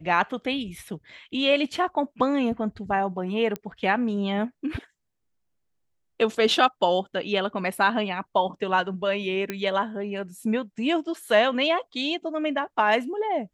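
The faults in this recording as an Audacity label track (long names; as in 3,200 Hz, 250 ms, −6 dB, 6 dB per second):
3.560000	3.560000	click −17 dBFS
9.500000	9.500000	click −14 dBFS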